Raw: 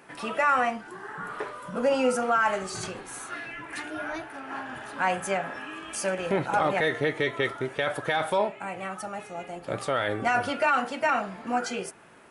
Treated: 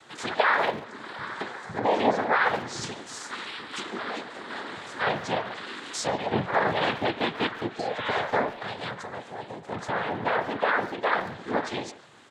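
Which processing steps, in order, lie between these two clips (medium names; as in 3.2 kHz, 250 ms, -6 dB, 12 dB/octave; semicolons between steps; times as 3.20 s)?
noise-vocoded speech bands 6; 7.78–8.11 s: spectral replace 850–4000 Hz both; 8.91–11.12 s: peaking EQ 6.3 kHz -8 dB 2.3 oct; low-pass that closes with the level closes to 2.9 kHz, closed at -26 dBFS; treble shelf 4.3 kHz +9 dB; speakerphone echo 140 ms, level -14 dB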